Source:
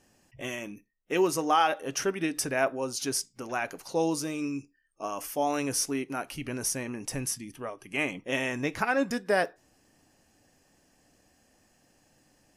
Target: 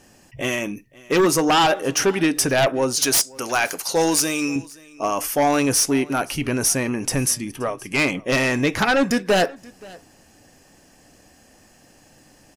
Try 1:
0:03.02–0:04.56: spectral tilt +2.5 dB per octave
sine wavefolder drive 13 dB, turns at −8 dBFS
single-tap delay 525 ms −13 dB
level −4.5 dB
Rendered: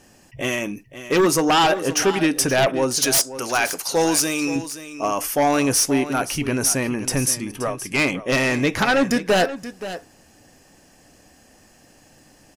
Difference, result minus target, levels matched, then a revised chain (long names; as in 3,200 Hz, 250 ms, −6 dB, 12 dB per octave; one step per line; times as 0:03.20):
echo-to-direct +10 dB
0:03.02–0:04.56: spectral tilt +2.5 dB per octave
sine wavefolder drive 13 dB, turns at −8 dBFS
single-tap delay 525 ms −23 dB
level −4.5 dB